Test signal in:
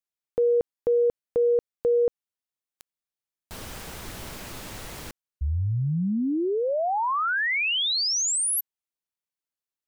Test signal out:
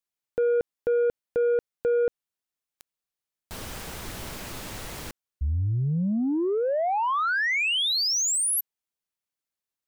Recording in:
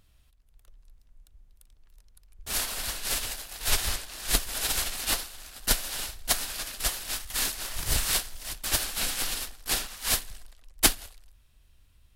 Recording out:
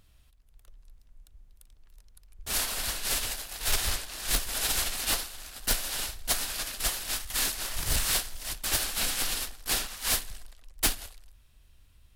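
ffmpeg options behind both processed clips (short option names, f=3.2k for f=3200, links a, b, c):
-af "asoftclip=type=tanh:threshold=-20.5dB,volume=1.5dB"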